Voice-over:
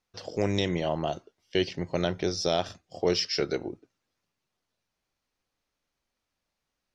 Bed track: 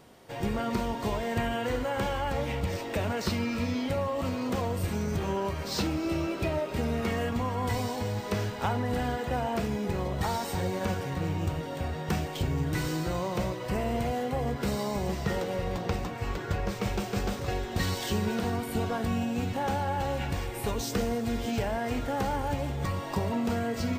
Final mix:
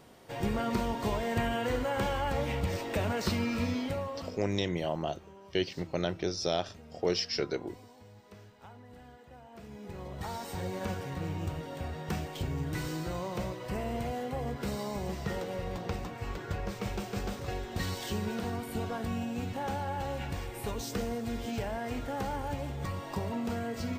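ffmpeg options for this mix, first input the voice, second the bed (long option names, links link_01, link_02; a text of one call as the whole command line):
ffmpeg -i stem1.wav -i stem2.wav -filter_complex "[0:a]adelay=4000,volume=-4dB[link_01];[1:a]volume=16.5dB,afade=type=out:start_time=3.65:duration=0.8:silence=0.0841395,afade=type=in:start_time=9.5:duration=1.29:silence=0.133352[link_02];[link_01][link_02]amix=inputs=2:normalize=0" out.wav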